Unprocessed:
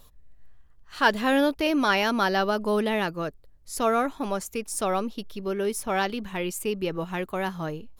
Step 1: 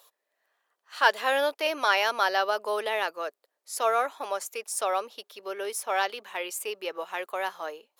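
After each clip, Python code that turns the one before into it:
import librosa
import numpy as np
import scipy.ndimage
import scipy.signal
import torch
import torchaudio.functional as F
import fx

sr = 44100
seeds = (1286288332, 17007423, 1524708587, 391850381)

y = scipy.signal.sosfilt(scipy.signal.butter(4, 490.0, 'highpass', fs=sr, output='sos'), x)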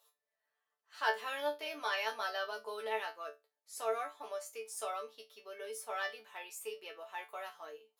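y = fx.resonator_bank(x, sr, root=50, chord='fifth', decay_s=0.21)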